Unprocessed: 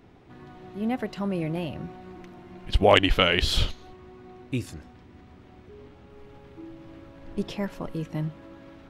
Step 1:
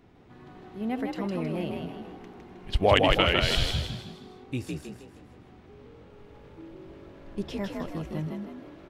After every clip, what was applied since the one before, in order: frequency-shifting echo 158 ms, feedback 42%, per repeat +47 Hz, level -3.5 dB; trim -3.5 dB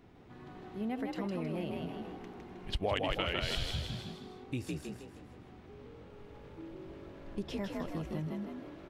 compression 2.5:1, threshold -33 dBFS, peak gain reduction 12 dB; trim -1.5 dB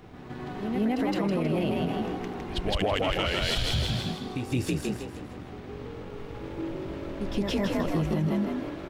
waveshaping leveller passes 1; reverse echo 167 ms -8 dB; peak limiter -27 dBFS, peak gain reduction 8 dB; trim +8.5 dB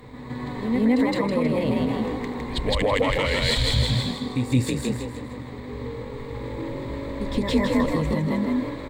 rippled EQ curve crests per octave 1, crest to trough 12 dB; trim +3.5 dB

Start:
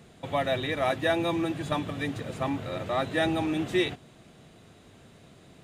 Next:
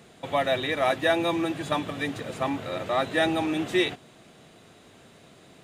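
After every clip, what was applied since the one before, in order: bass shelf 160 Hz -11 dB; trim +3.5 dB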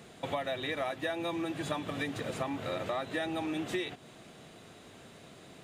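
compression 10:1, threshold -31 dBFS, peak gain reduction 14 dB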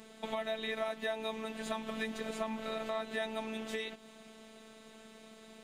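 robot voice 220 Hz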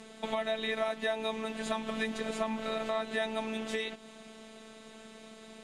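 low-pass 11 kHz 24 dB/octave; trim +4 dB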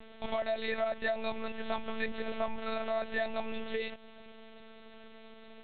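LPC vocoder at 8 kHz pitch kept

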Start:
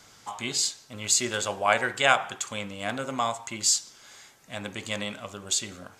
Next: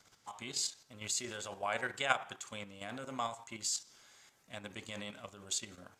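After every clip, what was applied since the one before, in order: level held to a coarse grid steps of 9 dB; trim -7.5 dB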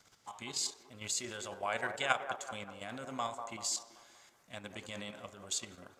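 feedback echo behind a band-pass 192 ms, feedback 47%, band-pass 680 Hz, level -6.5 dB

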